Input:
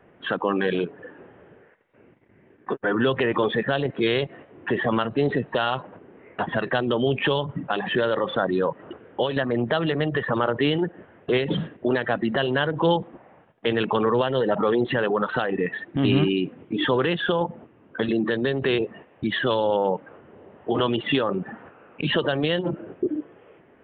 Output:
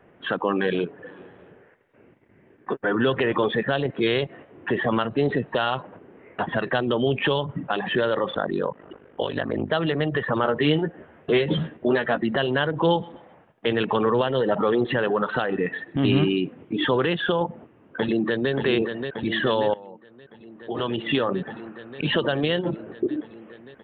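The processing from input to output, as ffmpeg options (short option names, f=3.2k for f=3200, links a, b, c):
-filter_complex "[0:a]asplit=3[a][b][c];[a]afade=t=out:st=1.05:d=0.02[d];[b]aecho=1:1:223|446|669:0.1|0.046|0.0212,afade=t=in:st=1.05:d=0.02,afade=t=out:st=3.33:d=0.02[e];[c]afade=t=in:st=3.33:d=0.02[f];[d][e][f]amix=inputs=3:normalize=0,asettb=1/sr,asplit=3[g][h][i];[g]atrim=end=8.314[j];[h]atrim=start=8.31:end=9.72,asetpts=PTS-STARTPTS,afade=t=in:d=0.004:c=qsin,afade=t=out:st=1.406:d=0.004:c=qsin,aeval=exprs='val(0)*sin(2*PI*25*n/s)':c=same[k];[i]atrim=start=9.716[l];[j][k]acrossfade=d=0.004:c1=hsin:c2=qsin[m];[m][l]acrossfade=d=0.004:c1=qsin:c2=hsin,asettb=1/sr,asplit=3[n][o][p];[n]atrim=end=10.434[q];[o]atrim=start=10.43:end=12.19,asetpts=PTS-STARTPTS,afade=t=in:d=0.004:c=qsin,afade=t=out:st=1.756:d=0.004:c=qsin,asplit=2[r][s];[s]adelay=13,volume=-5.5dB[t];[r][t]amix=inputs=2:normalize=0,atrim=end_sample=77616[u];[p]atrim=start=12.186[v];[q][u]acrossfade=d=0.004:c1=hsin:c2=qsin[w];[w][v]acrossfade=d=0.004:c1=qsin:c2=hsin,asettb=1/sr,asplit=3[x][y][z];[x]atrim=end=12.824[aa];[y]atrim=start=12.82:end=16.38,asetpts=PTS-STARTPTS,afade=t=in:d=0.004:c=qsin,afade=t=out:st=3.556:d=0.004:c=qsin,aecho=1:1:128|256|384:0.075|0.0277|0.0103,atrim=end_sample=156996[ab];[z]atrim=start=16.376[ac];[aa][ab]acrossfade=d=0.004:c1=hsin:c2=qsin[ad];[ad][ac]acrossfade=d=0.004:c1=qsin:c2=hsin,asplit=2[ae][af];[af]afade=t=in:st=17.43:d=0.01,afade=t=out:st=18.52:d=0.01,aecho=0:1:580|1160|1740|2320|2900|3480|4060|4640|5220|5800|6380|6960:0.473151|0.378521|0.302817|0.242253|0.193803|0.155042|0.124034|0.099227|0.0793816|0.0635053|0.0508042|0.0406434[ag];[ae][ag]amix=inputs=2:normalize=0,asplit=2[ah][ai];[ah]atrim=end=19.74,asetpts=PTS-STARTPTS,afade=t=out:st=19.736:d=0.004:c=hsin:silence=0.0944061[aj];[ai]atrim=start=19.74,asetpts=PTS-STARTPTS,afade=t=in:d=1.48:c=qua:silence=0.0944061[ak];[aj][ak]concat=n=2:v=0:a=1"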